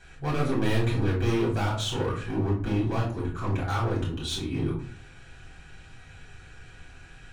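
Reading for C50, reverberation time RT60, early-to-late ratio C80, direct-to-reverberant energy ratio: 6.0 dB, 0.45 s, 11.0 dB, -7.0 dB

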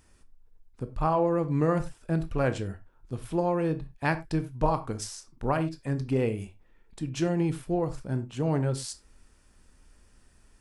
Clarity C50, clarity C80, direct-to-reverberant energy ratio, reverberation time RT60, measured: 15.5 dB, 20.5 dB, 10.0 dB, no single decay rate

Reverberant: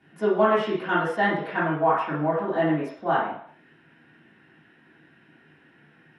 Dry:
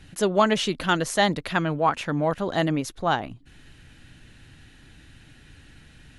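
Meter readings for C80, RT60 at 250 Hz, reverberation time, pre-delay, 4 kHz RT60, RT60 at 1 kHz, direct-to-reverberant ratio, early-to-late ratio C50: 6.5 dB, 0.45 s, 0.60 s, 3 ms, 0.65 s, 0.60 s, -12.0 dB, 2.5 dB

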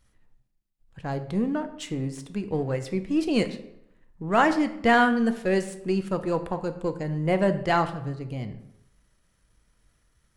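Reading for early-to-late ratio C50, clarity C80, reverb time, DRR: 12.5 dB, 14.5 dB, 0.80 s, 8.5 dB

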